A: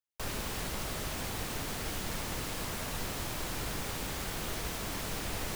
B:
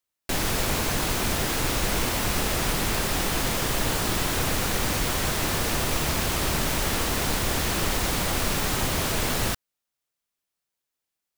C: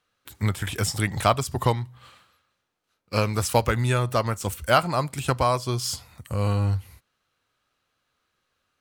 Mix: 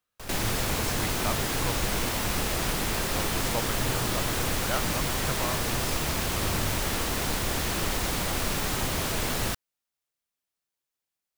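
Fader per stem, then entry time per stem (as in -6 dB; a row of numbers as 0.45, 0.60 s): -4.0, -3.0, -12.5 dB; 0.00, 0.00, 0.00 s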